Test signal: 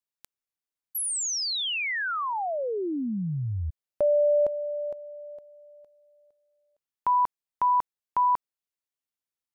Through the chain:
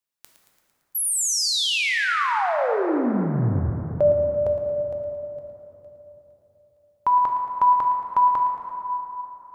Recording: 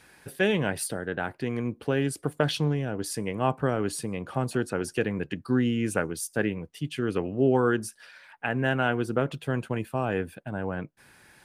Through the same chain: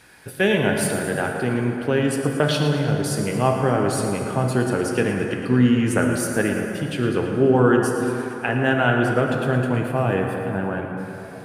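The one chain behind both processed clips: on a send: thinning echo 0.113 s, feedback 61%, level -11.5 dB; on the sum: plate-style reverb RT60 3.7 s, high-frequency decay 0.45×, DRR 2 dB; gain +4.5 dB

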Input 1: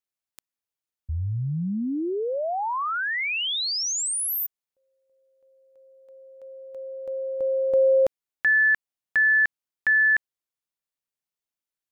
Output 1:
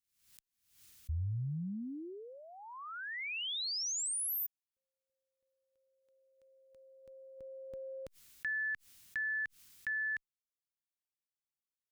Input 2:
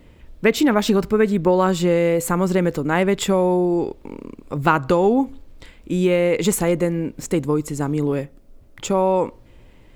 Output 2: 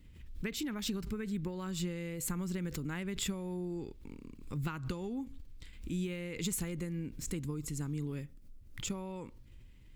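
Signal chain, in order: compressor, threshold -18 dBFS; passive tone stack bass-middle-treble 6-0-2; backwards sustainer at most 92 dB/s; gain +5 dB

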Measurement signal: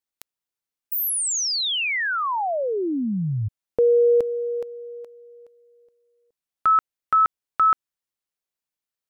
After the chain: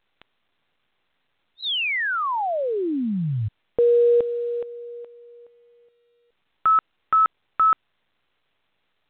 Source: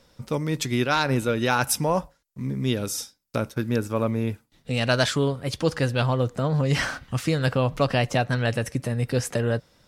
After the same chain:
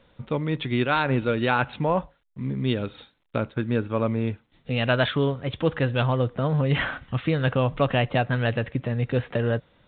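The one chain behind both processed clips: A-law 64 kbps 8000 Hz

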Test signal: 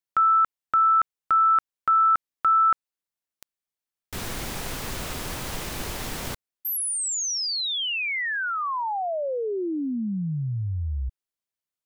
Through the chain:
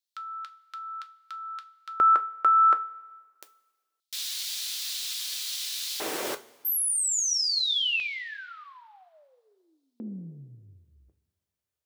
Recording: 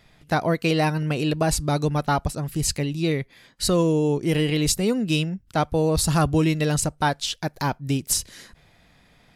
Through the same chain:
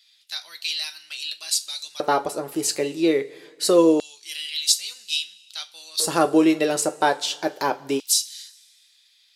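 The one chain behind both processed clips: two-slope reverb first 0.22 s, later 1.6 s, from -20 dB, DRR 6.5 dB; LFO high-pass square 0.25 Hz 410–3900 Hz

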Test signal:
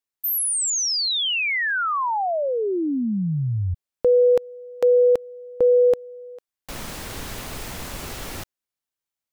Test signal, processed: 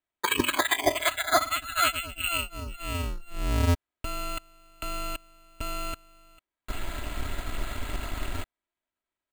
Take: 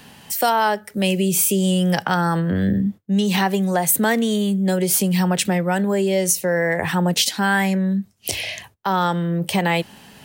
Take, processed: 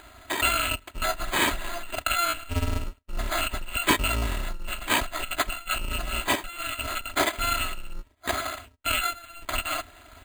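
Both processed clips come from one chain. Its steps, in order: FFT order left unsorted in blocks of 256 samples; comb 3.1 ms, depth 49%; careless resampling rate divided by 8×, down filtered, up hold; gain +5 dB

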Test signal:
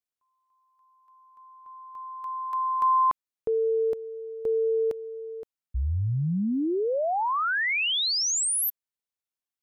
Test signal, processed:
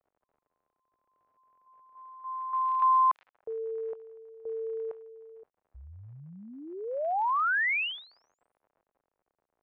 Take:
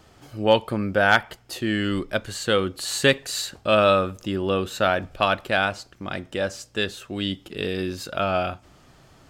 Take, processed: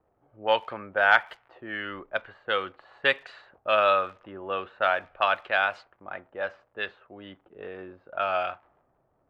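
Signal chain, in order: crackle 77/s -34 dBFS; three-band isolator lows -21 dB, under 590 Hz, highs -20 dB, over 3200 Hz; low-pass opened by the level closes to 370 Hz, open at -21.5 dBFS

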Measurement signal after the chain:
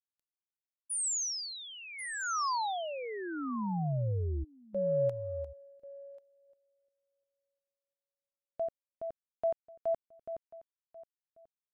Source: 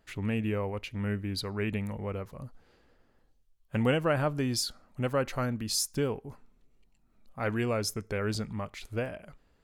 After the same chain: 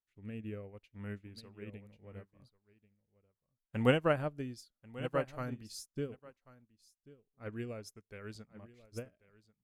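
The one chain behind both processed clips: rotary speaker horn 0.7 Hz; echo 1.089 s -8 dB; upward expander 2.5:1, over -47 dBFS; gain +1.5 dB

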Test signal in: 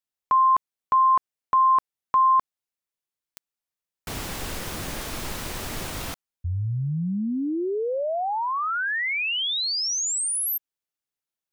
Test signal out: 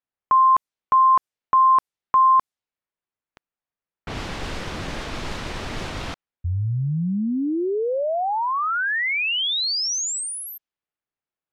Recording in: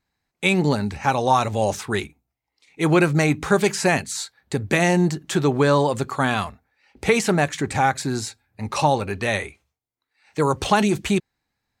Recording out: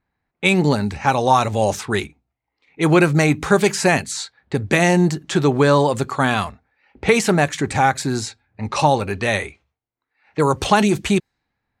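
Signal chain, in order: low-pass opened by the level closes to 2100 Hz, open at -19.5 dBFS; gain +3 dB

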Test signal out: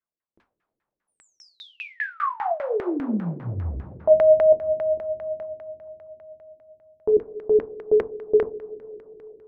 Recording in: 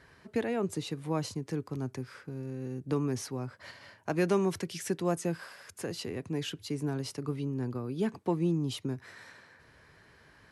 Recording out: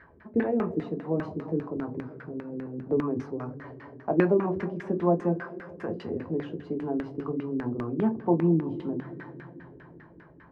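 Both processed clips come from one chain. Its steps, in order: two-slope reverb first 0.3 s, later 4.8 s, from -20 dB, DRR 1.5 dB; LFO low-pass saw down 5 Hz 300–1900 Hz

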